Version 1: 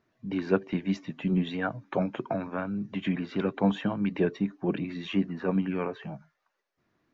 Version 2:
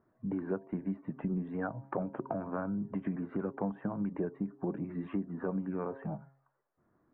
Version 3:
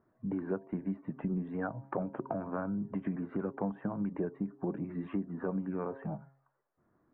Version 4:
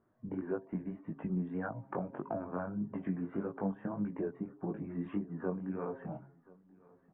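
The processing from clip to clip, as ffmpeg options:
-af "lowpass=f=1400:w=0.5412,lowpass=f=1400:w=1.3066,bandreject=f=135.6:t=h:w=4,bandreject=f=271.2:t=h:w=4,bandreject=f=406.8:t=h:w=4,bandreject=f=542.4:t=h:w=4,bandreject=f=678:t=h:w=4,bandreject=f=813.6:t=h:w=4,bandreject=f=949.2:t=h:w=4,acompressor=threshold=0.02:ratio=5,volume=1.26"
-af anull
-af "flanger=delay=18:depth=5:speed=1.7,aecho=1:1:1030|2060:0.0631|0.0196,aresample=8000,aresample=44100,volume=1.12"

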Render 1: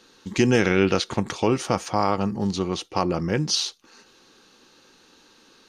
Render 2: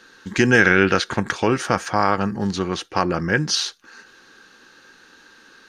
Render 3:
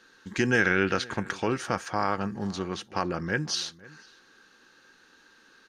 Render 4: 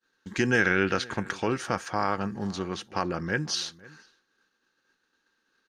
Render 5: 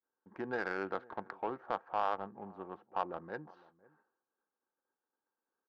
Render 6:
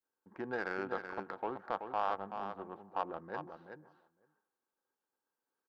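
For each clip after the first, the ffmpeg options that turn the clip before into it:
-af "equalizer=f=1600:w=2.7:g=13.5,volume=1.19"
-filter_complex "[0:a]asplit=2[s0][s1];[s1]adelay=507.3,volume=0.0891,highshelf=f=4000:g=-11.4[s2];[s0][s2]amix=inputs=2:normalize=0,volume=0.376"
-af "agate=range=0.0224:threshold=0.00447:ratio=3:detection=peak"
-af "bandpass=f=850:t=q:w=1.8:csg=0,adynamicsmooth=sensitivity=1:basefreq=850,volume=0.841"
-af "aecho=1:1:380:0.422,volume=0.891"

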